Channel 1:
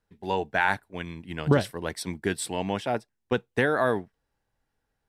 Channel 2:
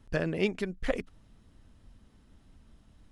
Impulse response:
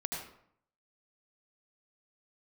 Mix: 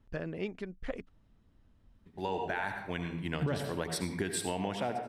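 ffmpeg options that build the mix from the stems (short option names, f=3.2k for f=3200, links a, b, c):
-filter_complex "[0:a]alimiter=limit=-16.5dB:level=0:latency=1:release=55,adelay=1950,volume=-4dB,asplit=2[a][b];[b]volume=-3dB[c];[1:a]lowpass=f=3k:p=1,volume=-7dB,asplit=2[d][e];[e]apad=whole_len=310356[f];[a][f]sidechaincompress=threshold=-58dB:ratio=8:attack=16:release=1010[g];[2:a]atrim=start_sample=2205[h];[c][h]afir=irnorm=-1:irlink=0[i];[g][d][i]amix=inputs=3:normalize=0,acompressor=threshold=-30dB:ratio=4"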